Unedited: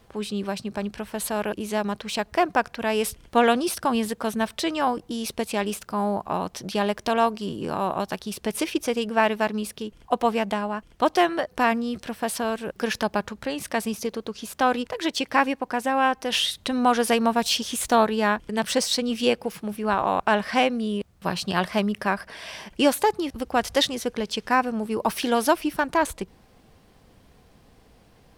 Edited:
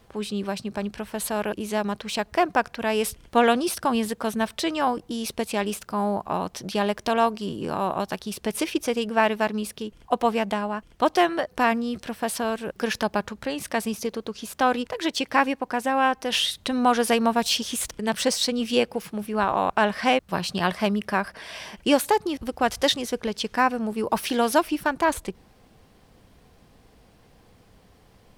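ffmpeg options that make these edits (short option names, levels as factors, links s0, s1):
-filter_complex "[0:a]asplit=3[s0][s1][s2];[s0]atrim=end=17.912[s3];[s1]atrim=start=18.408:end=20.692[s4];[s2]atrim=start=21.118[s5];[s3][s4]acrossfade=d=0.004:c1=hsin:c2=hsin[s6];[s6][s5]acrossfade=d=0.004:c1=hsin:c2=hsin"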